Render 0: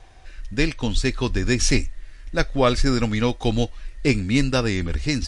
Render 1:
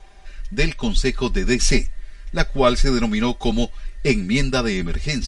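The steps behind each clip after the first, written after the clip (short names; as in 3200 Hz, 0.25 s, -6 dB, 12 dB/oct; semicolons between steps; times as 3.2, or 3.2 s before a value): comb 5 ms, depth 92%; gain -1 dB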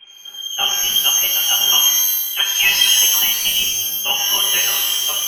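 inverted band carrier 3200 Hz; shimmer reverb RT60 1.1 s, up +12 st, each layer -2 dB, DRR 1.5 dB; gain -3.5 dB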